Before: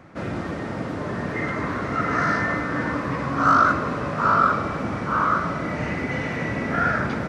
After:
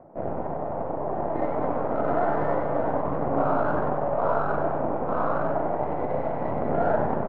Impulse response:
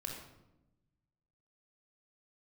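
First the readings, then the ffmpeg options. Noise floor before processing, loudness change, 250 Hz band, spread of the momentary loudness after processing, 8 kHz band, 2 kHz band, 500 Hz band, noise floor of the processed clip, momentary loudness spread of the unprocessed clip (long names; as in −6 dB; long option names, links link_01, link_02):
−30 dBFS, −3.5 dB, −4.0 dB, 6 LU, can't be measured, −13.5 dB, +4.5 dB, −31 dBFS, 11 LU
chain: -filter_complex "[0:a]aphaser=in_gain=1:out_gain=1:delay=4:decay=0.3:speed=0.29:type=triangular,highpass=frequency=180:poles=1,alimiter=limit=-15.5dB:level=0:latency=1:release=48,aeval=exprs='0.168*(cos(1*acos(clip(val(0)/0.168,-1,1)))-cos(1*PI/2))+0.0335*(cos(3*acos(clip(val(0)/0.168,-1,1)))-cos(3*PI/2))+0.0168*(cos(6*acos(clip(val(0)/0.168,-1,1)))-cos(6*PI/2))':channel_layout=same,acrusher=bits=5:mode=log:mix=0:aa=0.000001,lowpass=frequency=690:width_type=q:width=4,asplit=5[link_01][link_02][link_03][link_04][link_05];[link_02]adelay=95,afreqshift=150,volume=-7.5dB[link_06];[link_03]adelay=190,afreqshift=300,volume=-16.6dB[link_07];[link_04]adelay=285,afreqshift=450,volume=-25.7dB[link_08];[link_05]adelay=380,afreqshift=600,volume=-34.9dB[link_09];[link_01][link_06][link_07][link_08][link_09]amix=inputs=5:normalize=0,asplit=2[link_10][link_11];[1:a]atrim=start_sample=2205,asetrate=37044,aresample=44100[link_12];[link_11][link_12]afir=irnorm=-1:irlink=0,volume=-14dB[link_13];[link_10][link_13]amix=inputs=2:normalize=0"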